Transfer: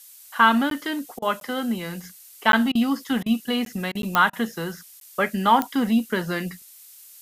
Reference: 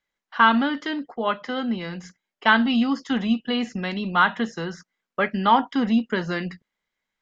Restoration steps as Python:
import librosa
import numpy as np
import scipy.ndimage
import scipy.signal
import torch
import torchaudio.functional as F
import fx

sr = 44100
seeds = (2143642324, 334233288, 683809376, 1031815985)

y = fx.fix_declick_ar(x, sr, threshold=10.0)
y = fx.fix_interpolate(y, sr, at_s=(0.7, 1.4, 2.52, 3.65, 4.02, 5.0), length_ms=12.0)
y = fx.fix_interpolate(y, sr, at_s=(1.19, 2.72, 3.23, 3.92, 4.3), length_ms=30.0)
y = fx.noise_reduce(y, sr, print_start_s=6.6, print_end_s=7.1, reduce_db=30.0)